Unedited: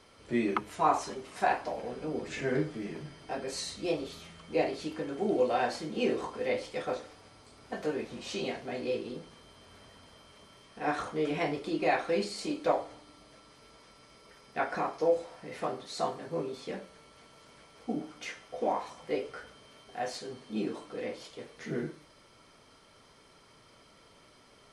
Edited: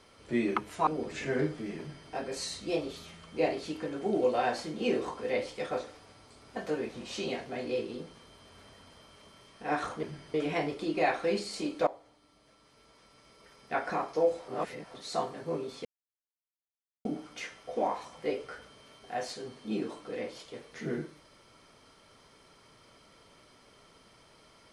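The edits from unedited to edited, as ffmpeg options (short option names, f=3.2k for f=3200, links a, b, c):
-filter_complex "[0:a]asplit=9[a][b][c][d][e][f][g][h][i];[a]atrim=end=0.872[j];[b]atrim=start=2.028:end=11.192[k];[c]atrim=start=2.948:end=3.262[l];[d]atrim=start=11.188:end=12.72,asetpts=PTS-STARTPTS,afade=t=out:st=1.528:d=0.004:c=hsin:silence=0.177828[m];[e]atrim=start=12.72:end=15.332,asetpts=PTS-STARTPTS,afade=t=in:d=1.98:silence=0.177828[n];[f]atrim=start=15.328:end=15.792,asetpts=PTS-STARTPTS,areverse[o];[g]atrim=start=15.788:end=16.7,asetpts=PTS-STARTPTS,afade=t=out:st=0.908:d=0.004:c=hsin[p];[h]atrim=start=16.7:end=17.9,asetpts=PTS-STARTPTS,volume=0[q];[i]atrim=start=17.9,asetpts=PTS-STARTPTS,afade=t=in:d=0.004:c=hsin[r];[j][k]acrossfade=d=0.004:c1=hsin:c2=hsin[s];[s][l]acrossfade=d=0.004:c1=hsin:c2=hsin[t];[m][n]concat=n=2:v=0:a=1[u];[t][u]acrossfade=d=0.004:c1=hsin:c2=hsin[v];[v][o]acrossfade=d=0.004:c1=hsin:c2=hsin[w];[p][q][r]concat=n=3:v=0:a=1[x];[w][x]acrossfade=d=0.004:c1=hsin:c2=hsin"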